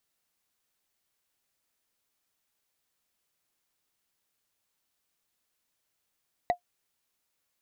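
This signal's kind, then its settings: wood hit, lowest mode 709 Hz, decay 0.10 s, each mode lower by 9.5 dB, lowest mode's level -16.5 dB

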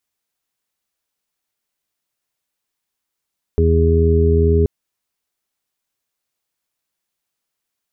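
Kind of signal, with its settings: steady additive tone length 1.08 s, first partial 82.1 Hz, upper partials -8/-10/-16.5/-2.5 dB, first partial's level -13 dB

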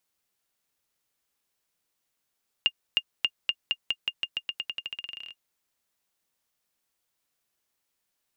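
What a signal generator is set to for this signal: bouncing ball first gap 0.31 s, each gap 0.89, 2.82 kHz, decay 56 ms -10 dBFS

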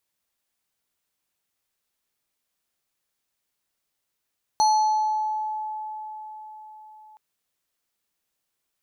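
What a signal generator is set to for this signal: FM tone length 2.57 s, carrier 861 Hz, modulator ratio 5.98, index 0.53, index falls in 1.45 s exponential, decay 4.79 s, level -15 dB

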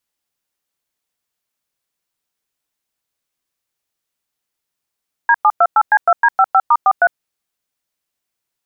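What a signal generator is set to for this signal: DTMF "D728C2D55*43", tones 54 ms, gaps 103 ms, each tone -10 dBFS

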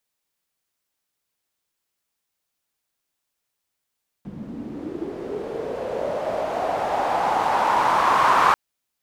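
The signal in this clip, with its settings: swept filtered noise pink, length 4.29 s bandpass, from 180 Hz, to 1.1 kHz, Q 4.5, linear, gain ramp +19 dB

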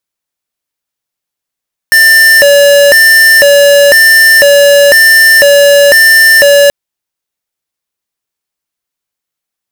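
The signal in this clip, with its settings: siren hi-lo 570–1790 Hz 1 per s square -3.5 dBFS 4.78 s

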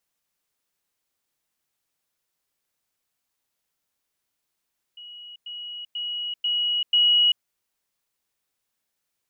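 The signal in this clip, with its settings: level ladder 2.91 kHz -39 dBFS, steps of 6 dB, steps 5, 0.39 s 0.10 s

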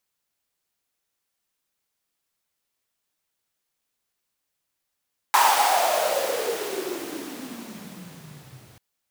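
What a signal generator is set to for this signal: swept filtered noise pink, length 3.44 s highpass, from 960 Hz, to 110 Hz, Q 9.3, exponential, gain ramp -33 dB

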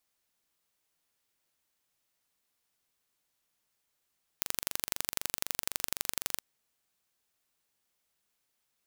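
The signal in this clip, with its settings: pulse train 23.9 per s, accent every 2, -2 dBFS 2.00 s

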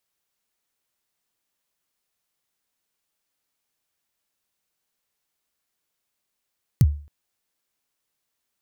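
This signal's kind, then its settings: kick drum length 0.27 s, from 160 Hz, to 73 Hz, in 43 ms, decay 0.40 s, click on, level -8 dB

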